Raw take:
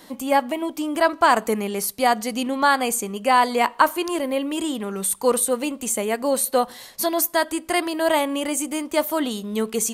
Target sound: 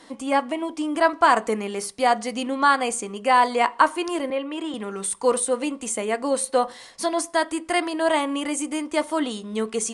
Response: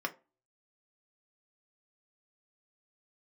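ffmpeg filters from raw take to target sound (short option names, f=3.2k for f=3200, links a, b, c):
-filter_complex "[0:a]asettb=1/sr,asplit=3[a][b][c];[a]atrim=end=4.304[d];[b]atrim=start=4.3:end=4.74,asetpts=PTS-STARTPTS,afade=t=in:d=0.004:c=qsin,afade=t=out:st=0.436:d=0.004:c=qsin,acrossover=split=290 3700:gain=0.0891 1 0.2[e][f][g];[e][f][g]amix=inputs=3:normalize=0[h];[c]atrim=start=4.736[i];[d][h]acrossfade=d=0.004:c1=hsin:c2=qsin[j];[j][i]acrossfade=d=0.004:c1=qsin:c2=hsin,asplit=2[k][l];[1:a]atrim=start_sample=2205[m];[l][m]afir=irnorm=-1:irlink=0,volume=-8.5dB[n];[k][n]amix=inputs=2:normalize=0,aresample=22050,aresample=44100,volume=-4.5dB"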